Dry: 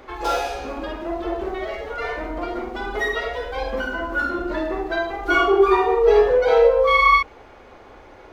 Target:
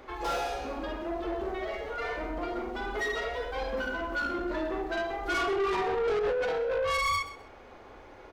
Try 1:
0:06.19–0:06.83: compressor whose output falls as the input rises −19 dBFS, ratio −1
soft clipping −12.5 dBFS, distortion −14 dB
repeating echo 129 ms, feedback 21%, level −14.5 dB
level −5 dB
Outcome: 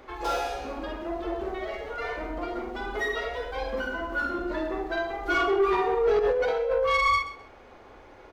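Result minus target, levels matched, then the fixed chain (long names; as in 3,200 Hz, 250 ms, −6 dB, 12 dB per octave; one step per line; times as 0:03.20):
soft clipping: distortion −8 dB
0:06.19–0:06.83: compressor whose output falls as the input rises −19 dBFS, ratio −1
soft clipping −21 dBFS, distortion −7 dB
repeating echo 129 ms, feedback 21%, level −14.5 dB
level −5 dB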